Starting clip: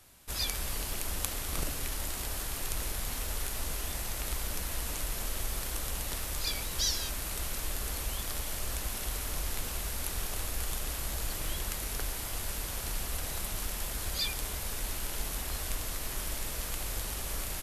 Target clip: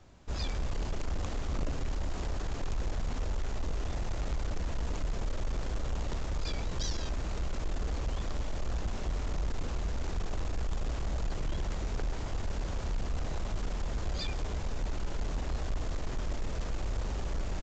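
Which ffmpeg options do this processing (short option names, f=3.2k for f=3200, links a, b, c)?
-af "tiltshelf=f=1.3k:g=7.5,aresample=16000,asoftclip=type=tanh:threshold=-26dB,aresample=44100"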